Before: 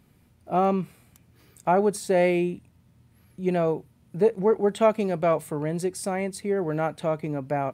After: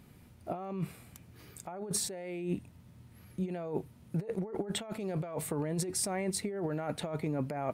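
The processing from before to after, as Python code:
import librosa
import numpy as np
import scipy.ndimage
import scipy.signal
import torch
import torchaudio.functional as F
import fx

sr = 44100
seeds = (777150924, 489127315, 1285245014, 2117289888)

y = fx.over_compress(x, sr, threshold_db=-32.0, ratio=-1.0)
y = y * librosa.db_to_amplitude(-4.0)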